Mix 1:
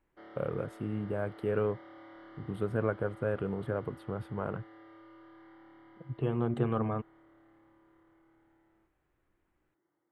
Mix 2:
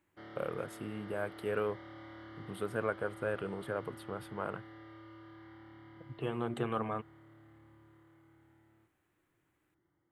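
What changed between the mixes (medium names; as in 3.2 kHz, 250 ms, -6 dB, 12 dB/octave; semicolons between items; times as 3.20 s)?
background: remove high-pass 440 Hz 12 dB/octave; master: add tilt EQ +3 dB/octave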